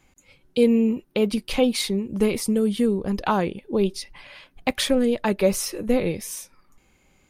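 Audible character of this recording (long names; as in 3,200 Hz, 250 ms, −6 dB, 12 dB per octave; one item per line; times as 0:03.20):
background noise floor −62 dBFS
spectral slope −4.5 dB per octave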